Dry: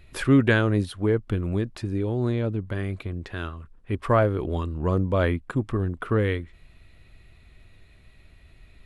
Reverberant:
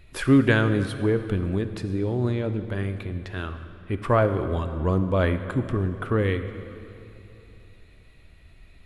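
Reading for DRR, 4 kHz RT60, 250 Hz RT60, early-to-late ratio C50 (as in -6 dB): 9.0 dB, 2.3 s, 3.1 s, 10.0 dB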